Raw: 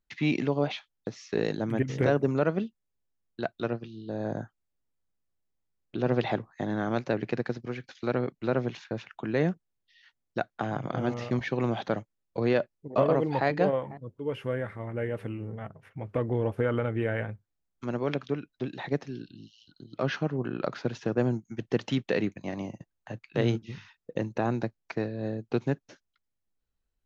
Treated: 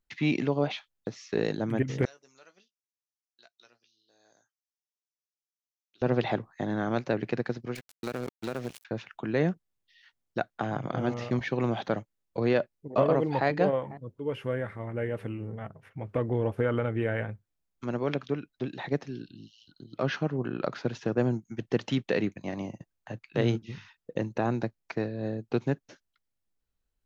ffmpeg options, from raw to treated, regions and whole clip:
-filter_complex "[0:a]asettb=1/sr,asplit=3[a][b][c];[a]atrim=end=2.054[d];[b]atrim=start=2.05:end=6.02,asetpts=PTS-STARTPTS,afade=t=in:d=0.004:c=qsin,afade=t=out:st=3.966:d=0.004:c=qsin,bandpass=f=5.8k:t=q:w=3.9,asplit=2[e][f];[f]adelay=16,volume=-8dB[g];[e][g]amix=inputs=2:normalize=0,atrim=end_sample=175077[h];[c]atrim=start=6.016[i];[d][h]acrossfade=d=0.004:c1=hsin:c2=qsin[j];[j][i]acrossfade=d=0.004:c1=qsin:c2=hsin,asettb=1/sr,asplit=3[k][l][m];[k]atrim=end=7.754[n];[l]atrim=start=7.75:end=8.85,asetpts=PTS-STARTPTS,afade=t=in:d=0.004:c=qsin,afade=t=out:st=1.096:d=0.004:c=qsin,aeval=exprs='sgn(val(0))*max(abs(val(0))-0.00944,0)':c=same,aemphasis=mode=production:type=75kf,acompressor=threshold=-28dB:ratio=5:attack=3.2:release=140:knee=1:detection=peak[o];[m]atrim=start=8.846[p];[n][o]acrossfade=d=0.004:c1=hsin:c2=qsin[q];[q][p]acrossfade=d=0.004:c1=qsin:c2=hsin"

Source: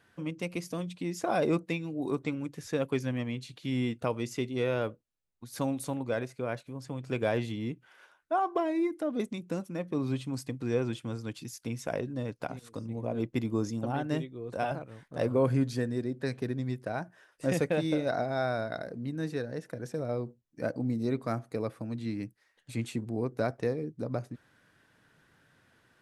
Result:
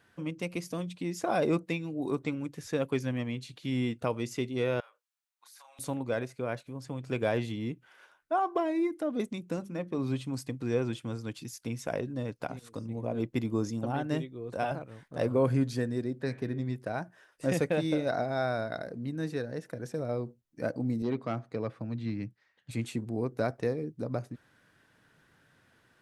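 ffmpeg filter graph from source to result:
-filter_complex "[0:a]asettb=1/sr,asplit=3[a][b][c];[a]atrim=end=4.804[d];[b]atrim=start=4.8:end=5.79,asetpts=PTS-STARTPTS,afade=t=in:d=0.004:c=qsin,afade=t=out:st=0.986:d=0.004:c=qsin,highpass=f=890:w=0.5412,highpass=f=890:w=1.3066,asplit=2[e][f];[f]adelay=31,volume=-3.5dB[g];[e][g]amix=inputs=2:normalize=0,atrim=end_sample=43659,acompressor=threshold=-52dB:ratio=8:attack=3.2:release=140:knee=1:detection=peak[h];[c]atrim=start=5.786[i];[d][h]acrossfade=d=0.004:c1=hsin:c2=qsin[j];[j][i]acrossfade=d=0.004:c1=qsin:c2=hsin,asettb=1/sr,asplit=3[k][l][m];[k]atrim=end=9.564[n];[l]atrim=start=9.56:end=9.99,asetpts=PTS-STARTPTS,afade=t=in:d=0.004:c=qsin,afade=t=out:st=0.426:d=0.004:c=qsin,highshelf=f=9k:g=-6.5,bandreject=f=50:t=h:w=6,bandreject=f=100:t=h:w=6,bandreject=f=150:t=h:w=6,bandreject=f=200:t=h:w=6,bandreject=f=250:t=h:w=6,bandreject=f=300:t=h:w=6,bandreject=f=350:t=h:w=6,bandreject=f=400:t=h:w=6[o];[m]atrim=start=9.986[p];[n][o]acrossfade=d=0.004:c1=hsin:c2=qsin[q];[q][p]acrossfade=d=0.004:c1=qsin:c2=hsin,asettb=1/sr,asplit=3[r][s][t];[r]atrim=end=16.214[u];[s]atrim=start=16.21:end=16.76,asetpts=PTS-STARTPTS,afade=t=in:d=0.004:c=qsin,afade=t=out:st=0.546:d=0.004:c=qsin,highshelf=f=4.6k:g=-6.5,bandreject=f=94.54:t=h:w=4,bandreject=f=189.08:t=h:w=4,bandreject=f=283.62:t=h:w=4,bandreject=f=378.16:t=h:w=4,bandreject=f=472.7:t=h:w=4,bandreject=f=567.24:t=h:w=4,bandreject=f=661.78:t=h:w=4,bandreject=f=756.32:t=h:w=4,bandreject=f=850.86:t=h:w=4,bandreject=f=945.4:t=h:w=4,bandreject=f=1.03994k:t=h:w=4,bandreject=f=1.13448k:t=h:w=4,bandreject=f=1.22902k:t=h:w=4,bandreject=f=1.32356k:t=h:w=4,bandreject=f=1.4181k:t=h:w=4,bandreject=f=1.51264k:t=h:w=4,bandreject=f=1.60718k:t=h:w=4,bandreject=f=1.70172k:t=h:w=4,bandreject=f=1.79626k:t=h:w=4,bandreject=f=1.8908k:t=h:w=4,bandreject=f=1.98534k:t=h:w=4,bandreject=f=2.07988k:t=h:w=4,bandreject=f=2.17442k:t=h:w=4,bandreject=f=2.26896k:t=h:w=4,bandreject=f=2.3635k:t=h:w=4,bandreject=f=2.45804k:t=h:w=4,bandreject=f=2.55258k:t=h:w=4,bandreject=f=2.64712k:t=h:w=4,bandreject=f=2.74166k:t=h:w=4,bandreject=f=2.8362k:t=h:w=4,bandreject=f=2.93074k:t=h:w=4,bandreject=f=3.02528k:t=h:w=4,bandreject=f=3.11982k:t=h:w=4,bandreject=f=3.21436k:t=h:w=4,bandreject=f=3.3089k:t=h:w=4,bandreject=f=3.40344k:t=h:w=4,bandreject=f=3.49798k:t=h:w=4,bandreject=f=3.59252k:t=h:w=4,bandreject=f=3.68706k:t=h:w=4[v];[t]atrim=start=16.756[w];[u][v]acrossfade=d=0.004:c1=hsin:c2=qsin[x];[x][w]acrossfade=d=0.004:c1=qsin:c2=hsin,asettb=1/sr,asplit=3[y][z][aa];[y]atrim=end=21.024[ab];[z]atrim=start=21.02:end=22.71,asetpts=PTS-STARTPTS,afade=t=in:d=0.004:c=qsin,afade=t=out:st=1.686:d=0.004:c=qsin,asubboost=boost=7:cutoff=160,asoftclip=type=hard:threshold=-23dB,highpass=120,lowpass=4.5k[ac];[aa]atrim=start=22.706[ad];[ab][ac]acrossfade=d=0.004:c1=hsin:c2=qsin[ae];[ae][ad]acrossfade=d=0.004:c1=qsin:c2=hsin"

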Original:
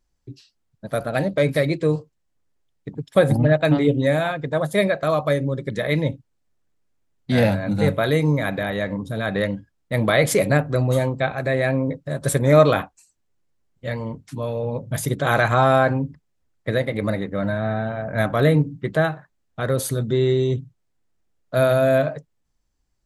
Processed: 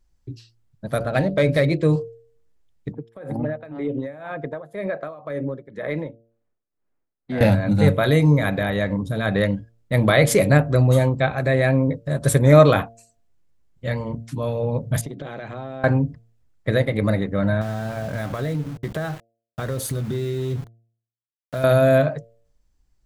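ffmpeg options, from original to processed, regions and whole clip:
-filter_complex "[0:a]asettb=1/sr,asplit=3[a][b][c];[a]atrim=end=0.984[d];[b]atrim=start=0.98:end=1.83,asetpts=PTS-STARTPTS,afade=t=in:d=0.004:c=qsin,afade=t=out:st=0.846:d=0.004:c=qsin,bandreject=f=50:t=h:w=6,bandreject=f=100:t=h:w=6,bandreject=f=150:t=h:w=6,bandreject=f=200:t=h:w=6,bandreject=f=250:t=h:w=6,bandreject=f=300:t=h:w=6,bandreject=f=350:t=h:w=6,bandreject=f=400:t=h:w=6,bandreject=f=450:t=h:w=6,bandreject=f=500:t=h:w=6,adynamicsmooth=sensitivity=5:basefreq=6.4k[e];[c]atrim=start=1.826[f];[d][e]acrossfade=d=0.004:c1=hsin:c2=qsin[g];[g][f]acrossfade=d=0.004:c1=qsin:c2=hsin,asettb=1/sr,asplit=3[h][i][j];[h]atrim=end=2.924[k];[i]atrim=start=2.92:end=7.41,asetpts=PTS-STARTPTS,afade=t=in:d=0.004:c=qsin,afade=t=out:st=4.486:d=0.004:c=qsin,acrossover=split=220 2200:gain=0.224 1 0.178[l][m][n];[l][m][n]amix=inputs=3:normalize=0,acompressor=threshold=-22dB:ratio=6:attack=3.2:release=140:knee=1:detection=peak,tremolo=f=2:d=0.84[o];[j]atrim=start=7.406[p];[k][o]acrossfade=d=0.004:c1=hsin:c2=qsin[q];[q][p]acrossfade=d=0.004:c1=qsin:c2=hsin,asettb=1/sr,asplit=3[r][s][t];[r]atrim=end=15.014[u];[s]atrim=start=15.01:end=15.84,asetpts=PTS-STARTPTS,afade=t=in:d=0.004:c=qsin,afade=t=out:st=0.826:d=0.004:c=qsin,highpass=210,lowpass=2.8k,equalizer=f=1.2k:t=o:w=1.7:g=-13,acompressor=threshold=-30dB:ratio=12:attack=3.2:release=140:knee=1:detection=peak[v];[t]atrim=start=15.836[w];[u][v]acrossfade=d=0.004:c1=hsin:c2=qsin[x];[x][w]acrossfade=d=0.004:c1=qsin:c2=hsin,asettb=1/sr,asplit=3[y][z][aa];[y]atrim=end=17.614[ab];[z]atrim=start=17.61:end=21.64,asetpts=PTS-STARTPTS,afade=t=in:d=0.004:c=qsin,afade=t=out:st=4.026:d=0.004:c=qsin,acompressor=threshold=-25dB:ratio=6:attack=3.2:release=140:knee=1:detection=peak,aeval=exprs='val(0)*gte(abs(val(0)),0.0119)':c=same[ac];[aa]atrim=start=21.636[ad];[ab][ac]acrossfade=d=0.004:c1=hsin:c2=qsin[ae];[ae][ad]acrossfade=d=0.004:c1=qsin:c2=hsin,lowshelf=f=120:g=8.5,bandreject=f=114.7:t=h:w=4,bandreject=f=229.4:t=h:w=4,bandreject=f=344.1:t=h:w=4,bandreject=f=458.8:t=h:w=4,bandreject=f=573.5:t=h:w=4,bandreject=f=688.2:t=h:w=4,volume=1dB"

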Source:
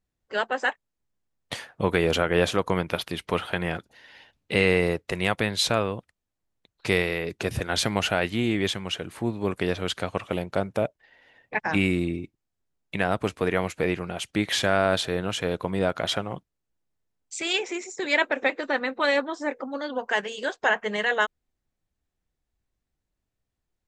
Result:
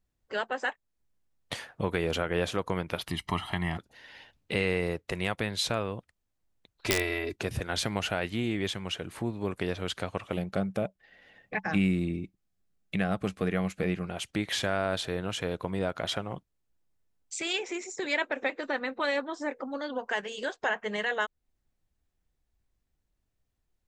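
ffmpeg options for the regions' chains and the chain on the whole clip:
-filter_complex "[0:a]asettb=1/sr,asplit=3[a][b][c];[a]atrim=end=3.084[d];[b]atrim=start=3.08:end=3.78,asetpts=PTS-STARTPTS,afade=t=in:d=0.004:c=qsin,afade=t=out:st=0.696:d=0.004:c=qsin,aecho=1:1:1:0.92,atrim=end_sample=30870,acompressor=mode=upward:threshold=-33dB:ratio=2.5:attack=3.2:release=140:knee=2.83:detection=peak[e];[c]atrim=start=3.776[f];[d][e]acrossfade=d=0.004:c1=hsin:c2=qsin[g];[g][f]acrossfade=d=0.004:c1=qsin:c2=hsin,asettb=1/sr,asplit=3[h][i][j];[h]atrim=end=6.864[k];[i]atrim=start=6.86:end=7.36,asetpts=PTS-STARTPTS,afade=t=in:d=0.004:c=qsin,afade=t=out:st=0.496:d=0.004:c=qsin,aecho=1:1:3:0.99,atrim=end_sample=22050,aeval=exprs='(mod(2.51*val(0)+1,2)-1)/2.51':c=same[l];[j]atrim=start=7.356[m];[k][l]acrossfade=d=0.004:c1=hsin:c2=qsin[n];[n][m]acrossfade=d=0.004:c1=qsin:c2=hsin,asettb=1/sr,asplit=3[o][p][q];[o]atrim=end=10.374[r];[p]atrim=start=10.37:end=14.06,asetpts=PTS-STARTPTS,afade=t=in:d=0.004:c=qsin,afade=t=out:st=3.686:d=0.004:c=qsin,asuperstop=centerf=940:order=12:qfactor=7,equalizer=f=190:t=o:w=0.28:g=10[s];[q]atrim=start=14.056[t];[r][s]acrossfade=d=0.004:c1=hsin:c2=qsin[u];[u][t]acrossfade=d=0.004:c1=qsin:c2=hsin,lowshelf=f=77:g=5.5,acompressor=threshold=-37dB:ratio=1.5"

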